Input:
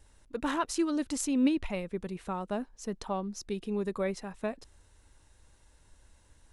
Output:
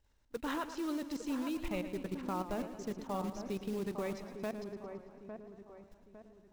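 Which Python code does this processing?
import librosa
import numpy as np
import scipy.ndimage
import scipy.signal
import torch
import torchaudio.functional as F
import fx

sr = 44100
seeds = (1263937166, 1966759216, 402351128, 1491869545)

y = scipy.signal.sosfilt(scipy.signal.butter(4, 6500.0, 'lowpass', fs=sr, output='sos'), x)
y = fx.level_steps(y, sr, step_db=18)
y = fx.quant_float(y, sr, bits=2)
y = fx.echo_wet_lowpass(y, sr, ms=855, feedback_pct=40, hz=1500.0, wet_db=-8.0)
y = fx.echo_warbled(y, sr, ms=111, feedback_pct=63, rate_hz=2.8, cents=65, wet_db=-11.5)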